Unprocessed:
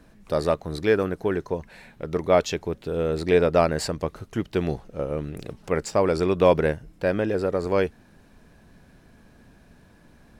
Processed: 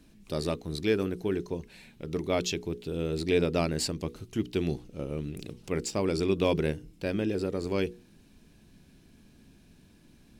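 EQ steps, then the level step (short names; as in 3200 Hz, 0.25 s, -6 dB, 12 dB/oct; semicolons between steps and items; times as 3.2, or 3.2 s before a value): low shelf 170 Hz -5 dB; band shelf 960 Hz -11 dB 2.3 oct; notches 60/120/180/240/300/360/420/480 Hz; 0.0 dB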